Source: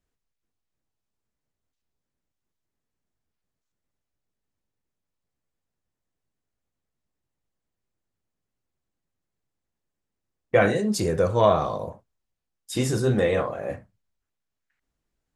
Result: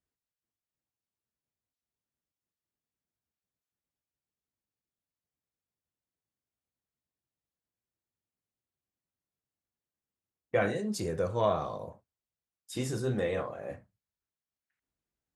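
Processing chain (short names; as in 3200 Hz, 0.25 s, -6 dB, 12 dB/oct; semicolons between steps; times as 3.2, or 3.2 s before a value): HPF 56 Hz; gain -9 dB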